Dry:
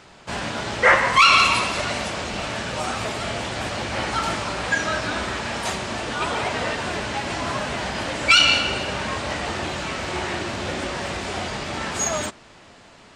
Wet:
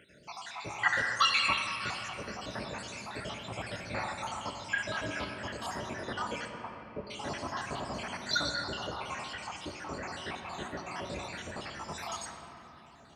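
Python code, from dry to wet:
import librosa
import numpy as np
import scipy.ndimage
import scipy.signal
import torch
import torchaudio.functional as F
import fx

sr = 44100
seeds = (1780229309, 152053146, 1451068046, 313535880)

y = fx.spec_dropout(x, sr, seeds[0], share_pct=72)
y = scipy.signal.sosfilt(scipy.signal.butter(2, 57.0, 'highpass', fs=sr, output='sos'), y)
y = fx.dmg_crackle(y, sr, seeds[1], per_s=170.0, level_db=-60.0)
y = fx.lowpass(y, sr, hz=1200.0, slope=24, at=(6.48, 7.07))
y = fx.room_shoebox(y, sr, seeds[2], volume_m3=220.0, walls='hard', distance_m=0.34)
y = F.gain(torch.from_numpy(y), -8.0).numpy()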